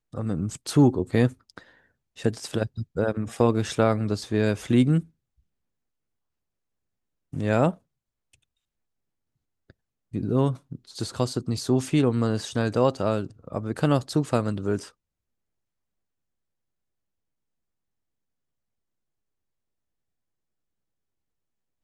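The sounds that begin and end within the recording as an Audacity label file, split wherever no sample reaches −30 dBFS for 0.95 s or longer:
7.330000	7.710000	sound
10.140000	14.820000	sound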